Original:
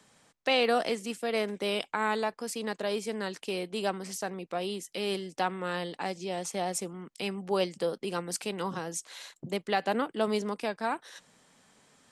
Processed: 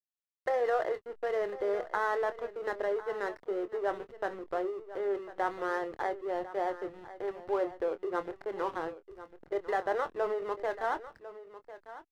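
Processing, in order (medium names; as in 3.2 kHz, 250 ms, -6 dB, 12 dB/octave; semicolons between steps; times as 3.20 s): FFT band-pass 320–2100 Hz; in parallel at -2.5 dB: compressor with a negative ratio -32 dBFS; on the sum: hysteresis with a dead band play -33.5 dBFS; doubling 25 ms -11.5 dB; delay 1049 ms -15 dB; trim -4 dB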